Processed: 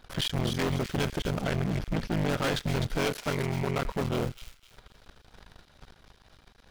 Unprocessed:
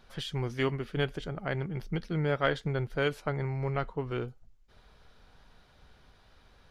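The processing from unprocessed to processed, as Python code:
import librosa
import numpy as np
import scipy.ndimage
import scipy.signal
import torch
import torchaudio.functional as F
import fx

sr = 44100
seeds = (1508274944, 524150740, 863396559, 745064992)

p1 = fx.cycle_switch(x, sr, every=3, mode='muted')
p2 = fx.high_shelf(p1, sr, hz=4700.0, db=-10.0, at=(1.4, 2.12))
p3 = fx.leveller(p2, sr, passes=2)
p4 = fx.low_shelf(p3, sr, hz=170.0, db=-11.0, at=(3.05, 3.83))
p5 = 10.0 ** (-30.5 / 20.0) * np.tanh(p4 / 10.0 ** (-30.5 / 20.0))
p6 = p5 + fx.echo_wet_highpass(p5, sr, ms=254, feedback_pct=34, hz=3100.0, wet_db=-5.0, dry=0)
y = p6 * librosa.db_to_amplitude(6.5)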